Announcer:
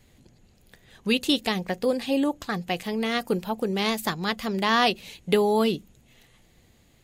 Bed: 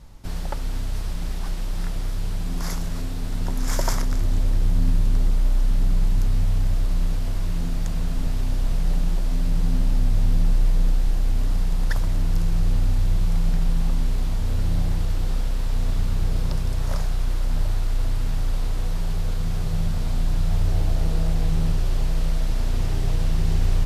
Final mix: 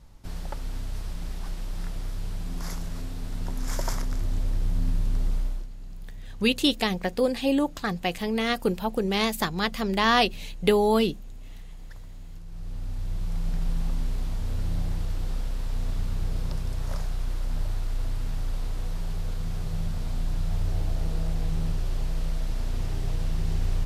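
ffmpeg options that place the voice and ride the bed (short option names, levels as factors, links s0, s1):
-filter_complex "[0:a]adelay=5350,volume=1.06[s0];[1:a]volume=2.82,afade=t=out:st=5.36:d=0.32:silence=0.177828,afade=t=in:st=12.45:d=1.25:silence=0.177828[s1];[s0][s1]amix=inputs=2:normalize=0"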